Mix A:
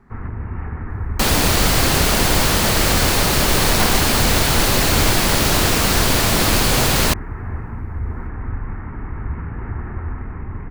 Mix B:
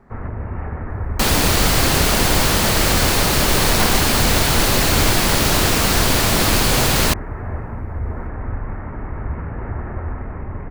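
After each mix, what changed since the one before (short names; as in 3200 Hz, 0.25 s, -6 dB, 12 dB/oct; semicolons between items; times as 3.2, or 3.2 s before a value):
first sound: add bell 590 Hz +12 dB 0.66 oct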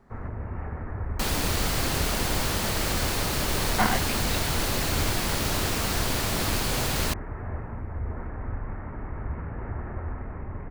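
first sound -7.0 dB; second sound -11.0 dB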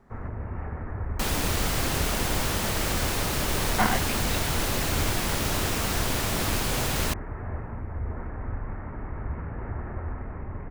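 master: add bell 4400 Hz -3.5 dB 0.27 oct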